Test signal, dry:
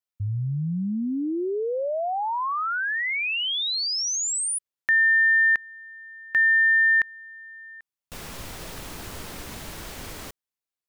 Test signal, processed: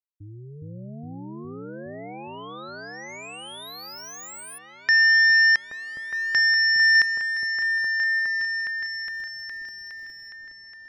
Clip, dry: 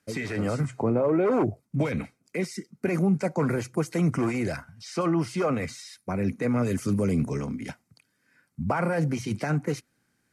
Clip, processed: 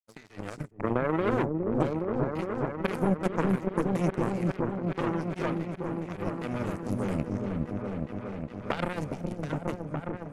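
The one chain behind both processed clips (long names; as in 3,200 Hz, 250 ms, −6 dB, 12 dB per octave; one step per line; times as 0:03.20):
power curve on the samples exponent 3
echo whose low-pass opens from repeat to repeat 413 ms, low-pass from 400 Hz, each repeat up 1 octave, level 0 dB
level +4 dB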